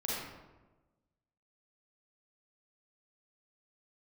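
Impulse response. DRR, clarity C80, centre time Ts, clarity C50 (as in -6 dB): -6.5 dB, 0.5 dB, 92 ms, -3.5 dB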